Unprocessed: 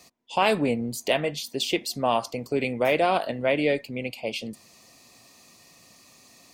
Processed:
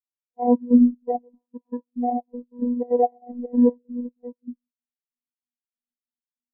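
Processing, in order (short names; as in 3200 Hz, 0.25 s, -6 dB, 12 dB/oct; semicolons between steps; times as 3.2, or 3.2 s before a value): FFT order left unsorted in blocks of 32 samples; LPF 1500 Hz 24 dB/oct; low shelf 170 Hz +10.5 dB; de-hum 61.02 Hz, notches 30; 3.32–3.83 frequency shift -23 Hz; robotiser 243 Hz; step gate ".xxx.xx." 191 bpm -12 dB; reverb, pre-delay 3 ms, DRR 18.5 dB; spectral expander 2.5:1; gain +8 dB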